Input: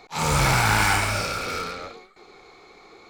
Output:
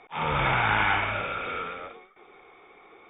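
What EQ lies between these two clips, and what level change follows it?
linear-phase brick-wall low-pass 3,700 Hz
high-frequency loss of the air 62 metres
low-shelf EQ 260 Hz −8.5 dB
−1.5 dB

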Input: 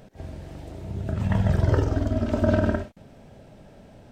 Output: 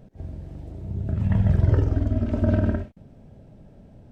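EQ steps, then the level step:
dynamic equaliser 2,200 Hz, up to +6 dB, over −48 dBFS, Q 1.1
tilt shelving filter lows +4 dB, about 700 Hz
low-shelf EQ 300 Hz +7 dB
−7.5 dB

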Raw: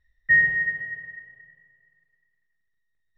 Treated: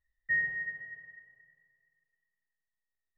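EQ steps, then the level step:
low-shelf EQ 420 Hz −8 dB
high-shelf EQ 2,100 Hz −11 dB
−6.5 dB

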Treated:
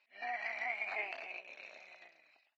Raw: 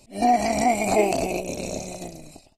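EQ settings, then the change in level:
four-pole ladder band-pass 2,000 Hz, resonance 55%
high-frequency loss of the air 270 metres
+4.5 dB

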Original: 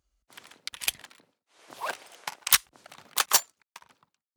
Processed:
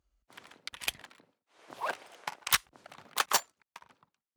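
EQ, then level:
high-shelf EQ 3,500 Hz −9.5 dB
0.0 dB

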